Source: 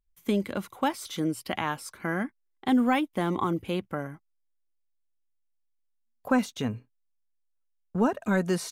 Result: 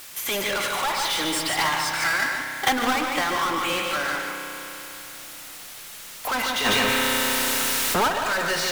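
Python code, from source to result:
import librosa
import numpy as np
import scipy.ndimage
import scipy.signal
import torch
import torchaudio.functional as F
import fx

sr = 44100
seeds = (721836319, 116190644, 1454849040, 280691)

p1 = scipy.signal.sosfilt(scipy.signal.butter(2, 1200.0, 'highpass', fs=sr, output='sos'), x)
p2 = fx.env_lowpass_down(p1, sr, base_hz=1800.0, full_db=-30.5)
p3 = fx.power_curve(p2, sr, exponent=0.35)
p4 = fx.quant_dither(p3, sr, seeds[0], bits=6, dither='triangular')
p5 = p3 + F.gain(torch.from_numpy(p4), -11.0).numpy()
p6 = fx.rev_spring(p5, sr, rt60_s=3.4, pass_ms=(31,), chirp_ms=20, drr_db=5.0)
p7 = 10.0 ** (-21.5 / 20.0) * np.tanh(p6 / 10.0 ** (-21.5 / 20.0))
p8 = p7 + fx.echo_single(p7, sr, ms=148, db=-4.0, dry=0)
p9 = fx.transient(p8, sr, attack_db=12, sustain_db=0, at=(1.55, 3.28))
y = fx.env_flatten(p9, sr, amount_pct=70, at=(6.64, 8.07), fade=0.02)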